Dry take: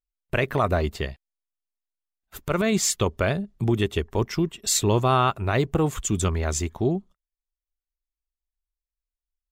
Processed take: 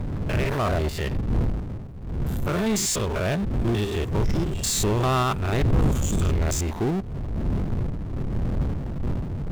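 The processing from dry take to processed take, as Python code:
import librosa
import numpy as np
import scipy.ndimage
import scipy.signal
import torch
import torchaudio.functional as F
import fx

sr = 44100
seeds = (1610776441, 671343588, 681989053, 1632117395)

y = fx.spec_steps(x, sr, hold_ms=100)
y = fx.dmg_wind(y, sr, seeds[0], corner_hz=120.0, level_db=-26.0)
y = fx.power_curve(y, sr, exponent=0.5)
y = y * librosa.db_to_amplitude(-8.5)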